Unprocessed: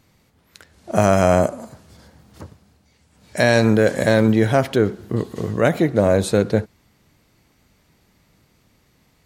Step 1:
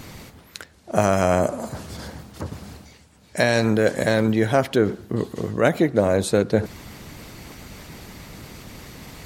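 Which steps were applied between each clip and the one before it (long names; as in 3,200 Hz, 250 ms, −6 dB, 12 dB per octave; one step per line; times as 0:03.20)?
harmonic and percussive parts rebalanced harmonic −5 dB
reversed playback
upward compression, threshold −21 dBFS
reversed playback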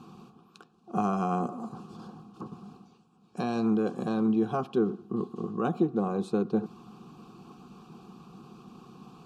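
formant filter a
low shelf with overshoot 390 Hz +12 dB, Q 3
phaser with its sweep stopped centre 420 Hz, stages 8
level +6.5 dB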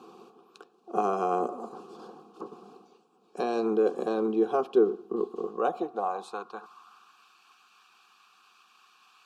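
high-pass filter sweep 420 Hz → 1,800 Hz, 0:05.31–0:07.28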